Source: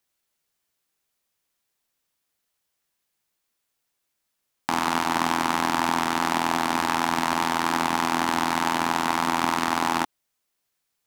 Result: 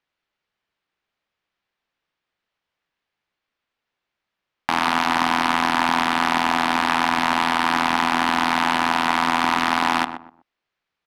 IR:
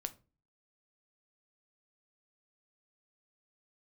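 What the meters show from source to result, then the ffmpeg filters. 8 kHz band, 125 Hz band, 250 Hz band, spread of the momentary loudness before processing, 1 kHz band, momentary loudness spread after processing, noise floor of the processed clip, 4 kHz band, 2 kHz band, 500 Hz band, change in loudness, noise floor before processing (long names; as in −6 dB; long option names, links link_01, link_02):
−2.0 dB, 0.0 dB, +2.5 dB, 1 LU, +4.0 dB, 2 LU, −84 dBFS, +5.0 dB, +6.0 dB, +1.5 dB, +4.0 dB, −78 dBFS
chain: -filter_complex "[0:a]asoftclip=type=hard:threshold=-11.5dB,crystalizer=i=9:c=0,lowpass=3700,adynamicsmooth=sensitivity=0.5:basefreq=2100,asplit=2[link_01][link_02];[link_02]adelay=124,lowpass=frequency=1100:poles=1,volume=-8dB,asplit=2[link_03][link_04];[link_04]adelay=124,lowpass=frequency=1100:poles=1,volume=0.29,asplit=2[link_05][link_06];[link_06]adelay=124,lowpass=frequency=1100:poles=1,volume=0.29[link_07];[link_03][link_05][link_07]amix=inputs=3:normalize=0[link_08];[link_01][link_08]amix=inputs=2:normalize=0"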